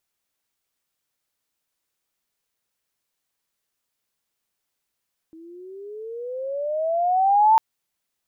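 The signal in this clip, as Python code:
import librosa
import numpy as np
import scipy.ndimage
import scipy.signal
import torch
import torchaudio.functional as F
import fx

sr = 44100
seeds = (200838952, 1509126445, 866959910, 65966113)

y = fx.riser_tone(sr, length_s=2.25, level_db=-11.0, wave='sine', hz=319.0, rise_st=18.0, swell_db=30.0)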